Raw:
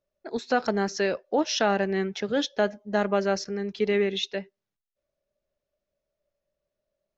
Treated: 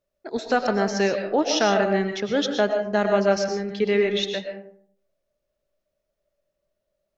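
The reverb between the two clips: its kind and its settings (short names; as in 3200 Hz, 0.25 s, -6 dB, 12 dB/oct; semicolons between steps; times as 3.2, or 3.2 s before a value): digital reverb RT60 0.59 s, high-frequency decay 0.45×, pre-delay 75 ms, DRR 5 dB; gain +2.5 dB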